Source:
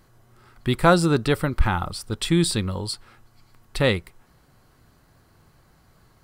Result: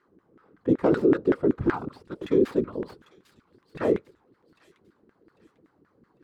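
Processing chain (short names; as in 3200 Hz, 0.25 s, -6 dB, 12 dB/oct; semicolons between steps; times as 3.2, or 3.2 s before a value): tracing distortion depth 0.28 ms; resonant low shelf 480 Hz +8 dB, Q 3; notch 370 Hz, Q 12; whisperiser; LFO band-pass saw down 5.3 Hz 290–1700 Hz; limiter -11 dBFS, peak gain reduction 8 dB; on a send: thin delay 0.798 s, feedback 36%, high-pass 3600 Hz, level -11.5 dB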